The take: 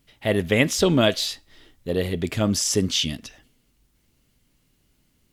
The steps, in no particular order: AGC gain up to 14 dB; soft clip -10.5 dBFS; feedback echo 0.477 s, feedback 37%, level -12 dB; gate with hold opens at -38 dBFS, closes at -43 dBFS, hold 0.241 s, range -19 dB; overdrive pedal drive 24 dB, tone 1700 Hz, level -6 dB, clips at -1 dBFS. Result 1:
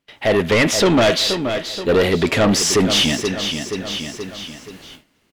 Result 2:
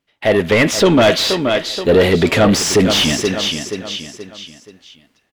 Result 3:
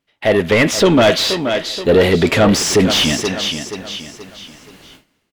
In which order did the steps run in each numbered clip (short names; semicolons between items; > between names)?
overdrive pedal > feedback echo > gate with hold > AGC > soft clip; AGC > gate with hold > feedback echo > soft clip > overdrive pedal; AGC > soft clip > feedback echo > gate with hold > overdrive pedal